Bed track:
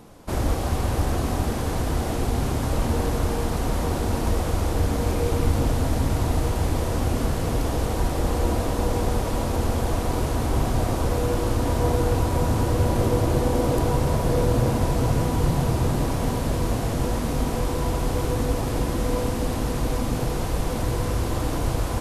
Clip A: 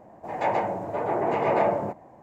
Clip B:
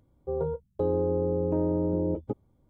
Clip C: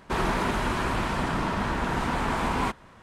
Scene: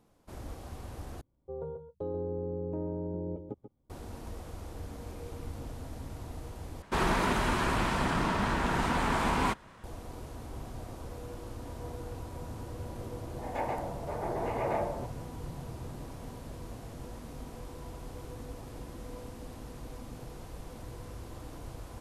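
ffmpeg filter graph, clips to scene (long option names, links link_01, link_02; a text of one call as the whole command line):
ffmpeg -i bed.wav -i cue0.wav -i cue1.wav -i cue2.wav -filter_complex "[0:a]volume=-19.5dB[link_01];[2:a]aecho=1:1:137:0.335[link_02];[3:a]highshelf=frequency=5600:gain=3.5[link_03];[link_01]asplit=3[link_04][link_05][link_06];[link_04]atrim=end=1.214[link_07];[link_02]atrim=end=2.69,asetpts=PTS-STARTPTS,volume=-9.5dB[link_08];[link_05]atrim=start=3.896:end=6.824[link_09];[link_03]atrim=end=3.02,asetpts=PTS-STARTPTS,volume=-2dB[link_10];[link_06]atrim=start=9.836[link_11];[1:a]atrim=end=2.22,asetpts=PTS-STARTPTS,volume=-9.5dB,afade=type=in:duration=0.004:curve=hsin,afade=type=out:start_time=2.216:duration=0.004:curve=hsin,adelay=13140[link_12];[link_07][link_08]acrossfade=duration=0.004:curve1=hsin:curve2=hsin[link_13];[link_13][link_09]acrossfade=duration=0.004:curve1=hsin:curve2=hsin[link_14];[link_14][link_10]acrossfade=duration=0.004:curve1=hsin:curve2=hsin[link_15];[link_15][link_11]acrossfade=duration=0.004:curve1=hsin:curve2=hsin[link_16];[link_16][link_12]amix=inputs=2:normalize=0" out.wav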